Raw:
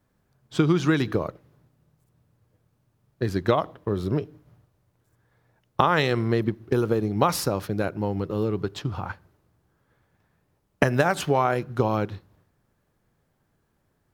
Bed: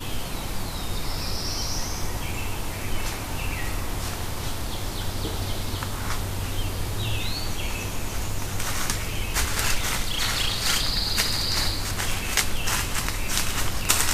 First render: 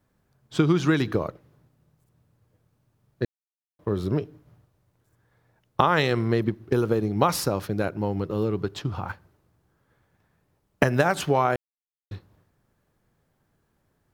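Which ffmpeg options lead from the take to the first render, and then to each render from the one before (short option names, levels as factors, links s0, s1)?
-filter_complex "[0:a]asettb=1/sr,asplit=3[s0][s1][s2];[s0]atrim=end=9.084[s3];[s1]atrim=start=9.08:end=10.84,asetpts=PTS-STARTPTS,afade=t=in:d=0.004:c=qsin,afade=t=out:st=1.756:d=0.004:c=qsin,acrusher=bits=8:mode=log:mix=0:aa=0.000001[s4];[s2]atrim=start=10.836[s5];[s3][s4]acrossfade=d=0.004:c1=hsin:c2=qsin[s6];[s6][s5]acrossfade=d=0.004:c1=qsin:c2=hsin,asplit=5[s7][s8][s9][s10][s11];[s7]atrim=end=3.25,asetpts=PTS-STARTPTS,afade=t=out:st=3.246:d=0.004:c=hsin[s12];[s8]atrim=start=3.25:end=3.79,asetpts=PTS-STARTPTS,volume=0[s13];[s9]atrim=start=3.79:end=11.56,asetpts=PTS-STARTPTS,afade=t=in:d=0.004:c=hsin,afade=t=out:st=7.766:d=0.004:c=hsin[s14];[s10]atrim=start=11.56:end=12.11,asetpts=PTS-STARTPTS,volume=0[s15];[s11]atrim=start=12.11,asetpts=PTS-STARTPTS,afade=t=in:d=0.004:c=hsin[s16];[s12][s13][s14][s15][s16]concat=n=5:v=0:a=1"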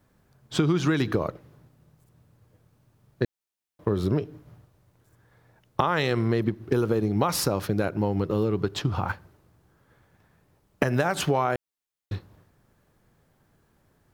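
-filter_complex "[0:a]asplit=2[s0][s1];[s1]alimiter=limit=0.2:level=0:latency=1,volume=0.891[s2];[s0][s2]amix=inputs=2:normalize=0,acompressor=threshold=0.0794:ratio=2.5"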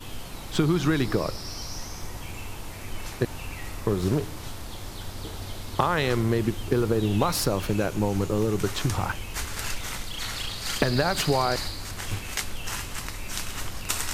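-filter_complex "[1:a]volume=0.422[s0];[0:a][s0]amix=inputs=2:normalize=0"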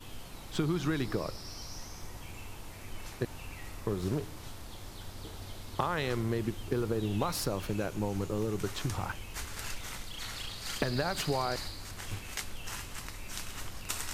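-af "volume=0.398"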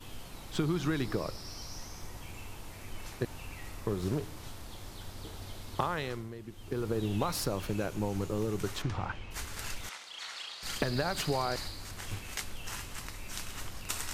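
-filter_complex "[0:a]asplit=3[s0][s1][s2];[s0]afade=t=out:st=8.81:d=0.02[s3];[s1]lowpass=3600,afade=t=in:st=8.81:d=0.02,afade=t=out:st=9.3:d=0.02[s4];[s2]afade=t=in:st=9.3:d=0.02[s5];[s3][s4][s5]amix=inputs=3:normalize=0,asettb=1/sr,asplit=3[s6][s7][s8];[s6]atrim=end=9.894[s9];[s7]atrim=start=9.89:end=10.63,asetpts=PTS-STARTPTS,afade=t=in:d=0.004:c=qsin,afade=t=out:st=0.736:d=0.004:c=qsin,highpass=700,lowpass=6700[s10];[s8]atrim=start=10.626[s11];[s9][s10]acrossfade=d=0.004:c1=hsin:c2=qsin[s12];[s12][s11]acrossfade=d=0.004:c1=qsin:c2=hsin,asplit=3[s13][s14][s15];[s13]atrim=end=6.31,asetpts=PTS-STARTPTS,afade=t=out:st=5.83:d=0.48:silence=0.237137[s16];[s14]atrim=start=6.31:end=6.48,asetpts=PTS-STARTPTS,volume=0.237[s17];[s15]atrim=start=6.48,asetpts=PTS-STARTPTS,afade=t=in:d=0.48:silence=0.237137[s18];[s16][s17][s18]concat=n=3:v=0:a=1"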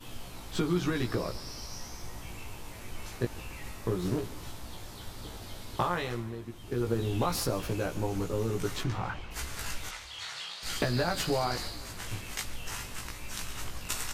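-filter_complex "[0:a]asplit=2[s0][s1];[s1]adelay=17,volume=0.794[s2];[s0][s2]amix=inputs=2:normalize=0,asplit=6[s3][s4][s5][s6][s7][s8];[s4]adelay=144,afreqshift=-37,volume=0.112[s9];[s5]adelay=288,afreqshift=-74,volume=0.0661[s10];[s6]adelay=432,afreqshift=-111,volume=0.0389[s11];[s7]adelay=576,afreqshift=-148,volume=0.0232[s12];[s8]adelay=720,afreqshift=-185,volume=0.0136[s13];[s3][s9][s10][s11][s12][s13]amix=inputs=6:normalize=0"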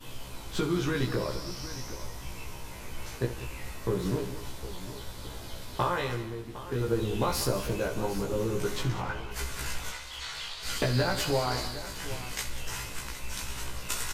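-filter_complex "[0:a]asplit=2[s0][s1];[s1]adelay=15,volume=0.596[s2];[s0][s2]amix=inputs=2:normalize=0,aecho=1:1:65|191|759:0.251|0.2|0.188"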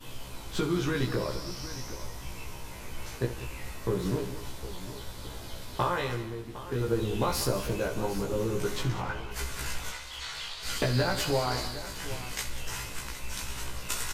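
-af anull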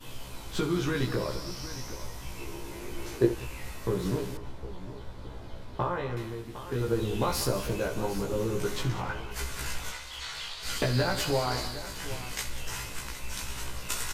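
-filter_complex "[0:a]asettb=1/sr,asplit=3[s0][s1][s2];[s0]atrim=end=2.394[s3];[s1]atrim=start=2.39:end=3.35,asetpts=PTS-STARTPTS,afade=t=in:d=0.004:c=qsin,afade=t=out:st=0.956:d=0.004:c=qsin,equalizer=f=350:t=o:w=0.56:g=14[s4];[s2]atrim=start=3.346[s5];[s3][s4]acrossfade=d=0.004:c1=hsin:c2=qsin[s6];[s6][s5]acrossfade=d=0.004:c1=qsin:c2=hsin,asettb=1/sr,asplit=3[s7][s8][s9];[s7]atrim=end=4.374[s10];[s8]atrim=start=4.37:end=6.17,asetpts=PTS-STARTPTS,afade=t=in:d=0.004:c=qsin,afade=t=out:st=1.796:d=0.004:c=qsin,lowpass=f=1100:p=1[s11];[s9]atrim=start=6.166[s12];[s10][s11]acrossfade=d=0.004:c1=hsin:c2=qsin[s13];[s13][s12]acrossfade=d=0.004:c1=qsin:c2=hsin"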